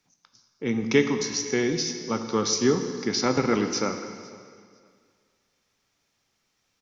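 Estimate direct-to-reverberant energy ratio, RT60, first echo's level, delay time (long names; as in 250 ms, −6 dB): 6.5 dB, 2.1 s, −24.0 dB, 504 ms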